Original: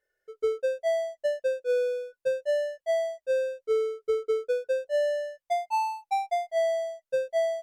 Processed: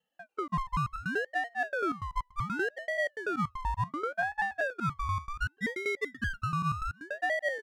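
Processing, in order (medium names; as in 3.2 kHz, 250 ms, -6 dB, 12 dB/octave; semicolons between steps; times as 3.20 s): slices played last to first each 96 ms, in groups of 2; speakerphone echo 300 ms, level -26 dB; ring modulator with a swept carrier 890 Hz, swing 45%, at 0.68 Hz; trim -1.5 dB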